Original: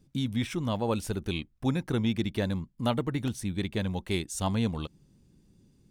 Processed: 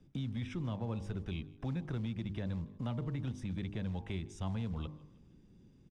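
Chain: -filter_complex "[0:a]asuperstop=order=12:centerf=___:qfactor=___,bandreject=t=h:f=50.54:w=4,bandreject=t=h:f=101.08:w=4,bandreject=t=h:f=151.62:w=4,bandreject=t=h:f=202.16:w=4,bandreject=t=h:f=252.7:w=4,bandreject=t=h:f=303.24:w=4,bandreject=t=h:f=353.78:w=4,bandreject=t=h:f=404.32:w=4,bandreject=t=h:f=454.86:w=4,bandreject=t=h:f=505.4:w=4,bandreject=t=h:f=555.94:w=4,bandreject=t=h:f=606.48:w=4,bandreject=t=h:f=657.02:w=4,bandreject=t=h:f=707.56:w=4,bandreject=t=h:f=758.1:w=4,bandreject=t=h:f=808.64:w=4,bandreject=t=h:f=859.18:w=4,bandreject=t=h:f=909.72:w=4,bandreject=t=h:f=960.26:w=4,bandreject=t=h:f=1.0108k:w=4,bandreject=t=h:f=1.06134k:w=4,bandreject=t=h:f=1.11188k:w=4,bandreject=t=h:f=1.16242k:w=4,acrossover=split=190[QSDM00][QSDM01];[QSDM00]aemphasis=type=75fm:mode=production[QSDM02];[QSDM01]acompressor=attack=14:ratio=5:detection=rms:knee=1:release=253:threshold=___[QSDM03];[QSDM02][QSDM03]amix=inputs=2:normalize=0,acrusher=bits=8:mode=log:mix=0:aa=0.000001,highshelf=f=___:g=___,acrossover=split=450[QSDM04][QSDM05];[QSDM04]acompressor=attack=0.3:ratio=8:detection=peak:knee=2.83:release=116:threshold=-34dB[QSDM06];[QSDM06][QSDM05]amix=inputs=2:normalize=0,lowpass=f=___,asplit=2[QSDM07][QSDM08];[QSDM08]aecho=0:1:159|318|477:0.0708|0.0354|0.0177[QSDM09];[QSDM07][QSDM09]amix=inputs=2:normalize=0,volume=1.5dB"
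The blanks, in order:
4300, 7.2, -43dB, 4.3k, -7.5, 5.6k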